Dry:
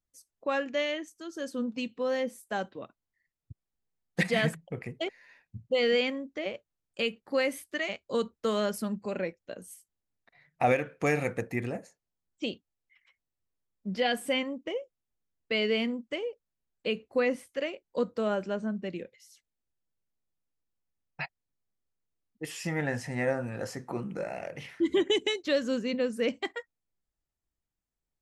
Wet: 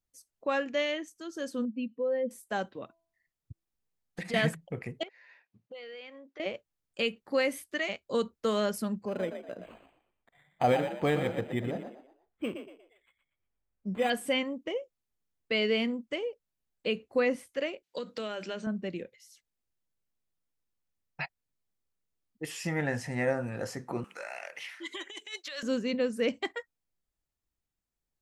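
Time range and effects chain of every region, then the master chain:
1.65–2.31 s: spectral contrast enhancement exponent 1.7 + boxcar filter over 6 samples + expander -56 dBFS
2.83–4.34 s: compression 8:1, threshold -34 dBFS + de-hum 331.9 Hz, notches 3
5.03–6.40 s: band-pass 460–4100 Hz + compression 3:1, threshold -48 dBFS
9.05–14.10 s: treble shelf 3.9 kHz -6 dB + frequency-shifting echo 119 ms, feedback 34%, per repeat +44 Hz, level -8.5 dB + decimation joined by straight lines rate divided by 8×
17.83–18.67 s: frequency weighting D + compression 10:1, threshold -31 dBFS + hum notches 50/100/150/200/250/300/350 Hz
24.04–25.63 s: high-pass 1.2 kHz + compressor with a negative ratio -39 dBFS + tape noise reduction on one side only encoder only
whole clip: none

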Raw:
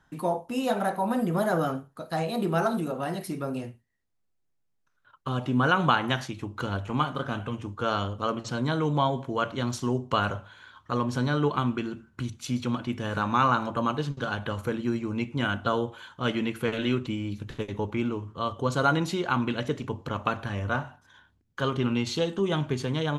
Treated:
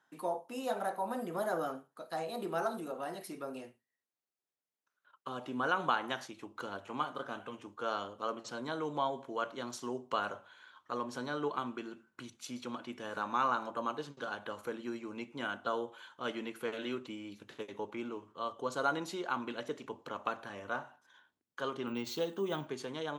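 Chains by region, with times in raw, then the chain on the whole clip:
21.87–22.67 s: bass shelf 180 Hz +8 dB + careless resampling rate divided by 2×, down none, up hold
whole clip: high-pass 340 Hz 12 dB/octave; dynamic bell 2.6 kHz, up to -4 dB, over -43 dBFS, Q 1.1; trim -7 dB

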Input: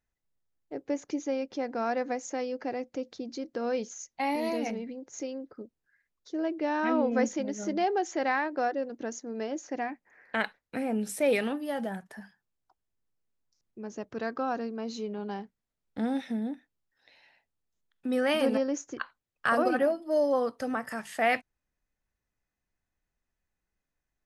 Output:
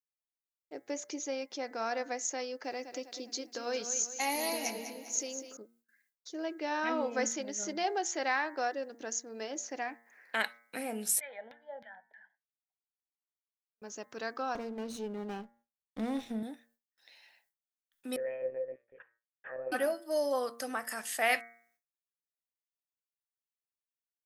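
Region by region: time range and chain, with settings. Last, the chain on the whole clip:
2.64–5.57 s: treble shelf 5 kHz +6 dB + feedback delay 200 ms, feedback 47%, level -10 dB
11.20–13.82 s: Chebyshev low-pass 3.3 kHz, order 4 + LFO band-pass saw down 3.2 Hz 310–2600 Hz + static phaser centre 1.8 kHz, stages 8
14.55–16.43 s: comb filter that takes the minimum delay 0.32 ms + tilt EQ -3 dB/octave
18.16–19.72 s: low-pass that closes with the level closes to 1.7 kHz, closed at -23 dBFS + monotone LPC vocoder at 8 kHz 130 Hz + cascade formant filter e
whole clip: RIAA curve recording; de-hum 116.9 Hz, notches 19; gate with hold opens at -60 dBFS; trim -3 dB

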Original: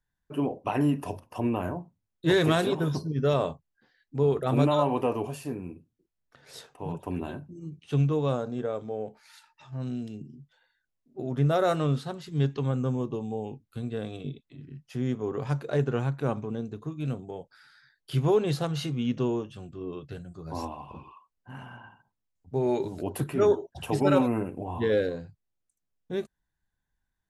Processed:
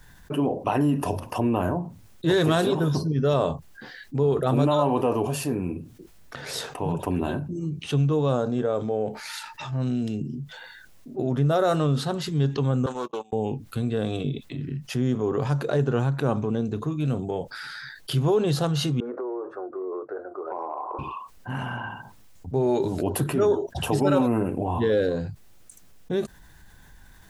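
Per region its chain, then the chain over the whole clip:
12.86–13.33 s: high-pass 710 Hz + gate -45 dBFS, range -41 dB + loudspeaker Doppler distortion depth 0.15 ms
19.00–20.99 s: elliptic band-pass 370–1400 Hz + compression, threshold -41 dBFS
whole clip: dynamic bell 2.2 kHz, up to -7 dB, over -55 dBFS, Q 3.2; level flattener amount 50%

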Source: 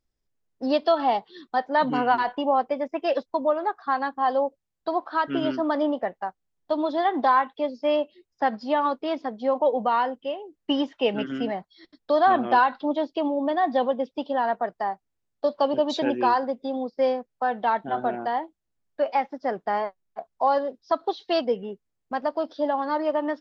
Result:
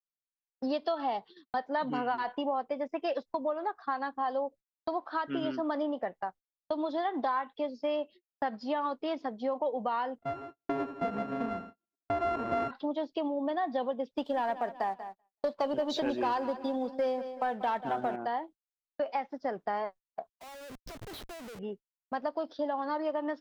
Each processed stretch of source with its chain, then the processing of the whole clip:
10.18–12.71 s: sorted samples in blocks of 64 samples + low-pass 1.3 kHz + feedback delay 82 ms, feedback 52%, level -12 dB
14.08–18.16 s: waveshaping leveller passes 1 + feedback delay 189 ms, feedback 37%, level -15 dB
20.29–21.59 s: treble shelf 2.2 kHz -4 dB + compression, threshold -34 dBFS + Schmitt trigger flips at -52 dBFS
whole clip: gate -41 dBFS, range -38 dB; compression 3:1, threshold -26 dBFS; trim -3.5 dB

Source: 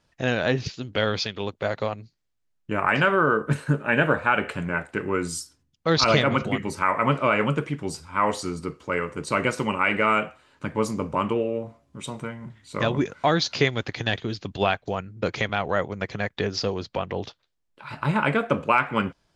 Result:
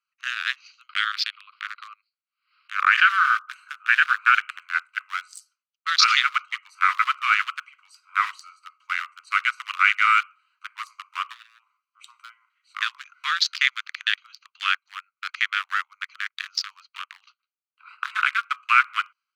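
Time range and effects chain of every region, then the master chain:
0.89–3.10 s: brick-wall FIR band-pass 990–5500 Hz + swell ahead of each attack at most 120 dB/s
whole clip: local Wiener filter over 25 samples; steep high-pass 1.2 kHz 72 dB/octave; level rider gain up to 3.5 dB; trim +3.5 dB

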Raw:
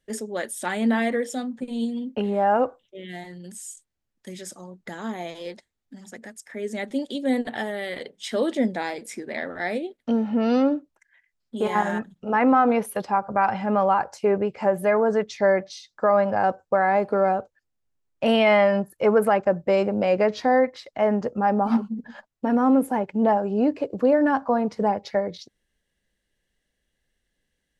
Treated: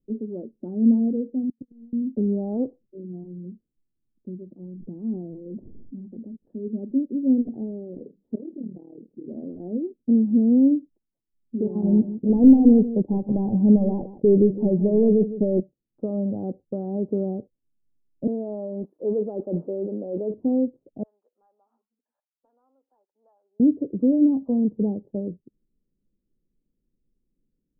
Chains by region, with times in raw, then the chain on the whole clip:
1.49–1.93 s: inverted gate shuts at -26 dBFS, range -34 dB + waveshaping leveller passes 3
4.63–6.68 s: dynamic bell 580 Hz, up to -4 dB, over -42 dBFS, Q 0.98 + decay stretcher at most 31 dB/s
8.35–9.25 s: AM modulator 38 Hz, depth 75% + compression 3:1, threshold -36 dBFS
11.83–15.60 s: waveshaping leveller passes 2 + Butterworth band-stop 1.3 kHz, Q 3 + delay 161 ms -13.5 dB
18.27–20.34 s: zero-crossing glitches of -20 dBFS + high-pass 440 Hz + decay stretcher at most 58 dB/s
21.03–23.60 s: high-pass 1.4 kHz 24 dB/octave + three bands compressed up and down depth 40%
whole clip: inverse Chebyshev low-pass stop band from 2 kHz, stop band 80 dB; peaking EQ 64 Hz -11.5 dB 1.8 oct; trim +7 dB

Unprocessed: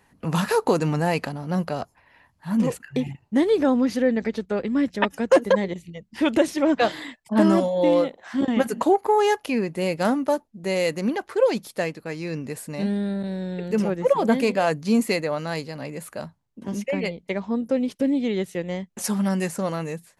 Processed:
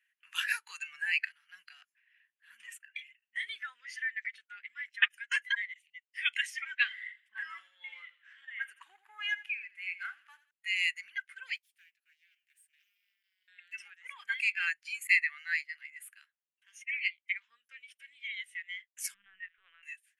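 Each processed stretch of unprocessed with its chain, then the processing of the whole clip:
6.83–10.51 s: treble shelf 2.9 kHz -10.5 dB + feedback delay 83 ms, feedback 45%, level -12 dB
11.56–13.48 s: companding laws mixed up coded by mu + amplifier tone stack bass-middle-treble 6-0-2 + loudspeaker Doppler distortion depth 0.47 ms
15.07–15.77 s: expander -34 dBFS + peaking EQ 1.9 kHz +7 dB 0.33 oct
19.14–19.83 s: tilt shelf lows +7 dB, about 670 Hz + LPC vocoder at 8 kHz pitch kept
whole clip: elliptic high-pass 1.6 kHz, stop band 60 dB; resonant high shelf 3.5 kHz -6 dB, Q 3; spectral noise reduction 13 dB

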